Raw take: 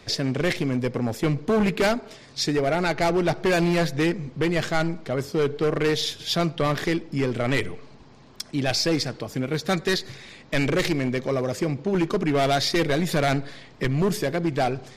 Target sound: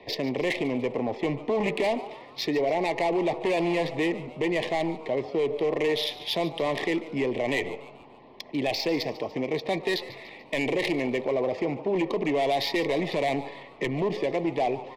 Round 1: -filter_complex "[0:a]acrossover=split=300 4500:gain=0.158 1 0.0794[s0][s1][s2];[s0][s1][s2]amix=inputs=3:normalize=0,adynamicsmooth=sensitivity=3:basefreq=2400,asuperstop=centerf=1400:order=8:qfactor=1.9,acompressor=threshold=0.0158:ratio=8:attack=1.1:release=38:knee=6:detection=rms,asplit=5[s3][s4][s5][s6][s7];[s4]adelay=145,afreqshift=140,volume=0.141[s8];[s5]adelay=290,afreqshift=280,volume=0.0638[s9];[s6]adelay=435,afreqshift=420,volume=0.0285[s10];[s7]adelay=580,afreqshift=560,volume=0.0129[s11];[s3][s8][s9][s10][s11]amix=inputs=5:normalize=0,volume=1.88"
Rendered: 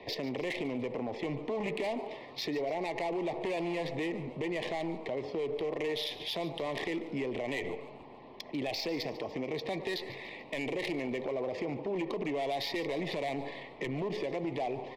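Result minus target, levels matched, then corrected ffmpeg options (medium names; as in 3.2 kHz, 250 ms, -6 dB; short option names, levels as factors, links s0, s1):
compression: peak gain reduction +9 dB
-filter_complex "[0:a]acrossover=split=300 4500:gain=0.158 1 0.0794[s0][s1][s2];[s0][s1][s2]amix=inputs=3:normalize=0,adynamicsmooth=sensitivity=3:basefreq=2400,asuperstop=centerf=1400:order=8:qfactor=1.9,acompressor=threshold=0.0501:ratio=8:attack=1.1:release=38:knee=6:detection=rms,asplit=5[s3][s4][s5][s6][s7];[s4]adelay=145,afreqshift=140,volume=0.141[s8];[s5]adelay=290,afreqshift=280,volume=0.0638[s9];[s6]adelay=435,afreqshift=420,volume=0.0285[s10];[s7]adelay=580,afreqshift=560,volume=0.0129[s11];[s3][s8][s9][s10][s11]amix=inputs=5:normalize=0,volume=1.88"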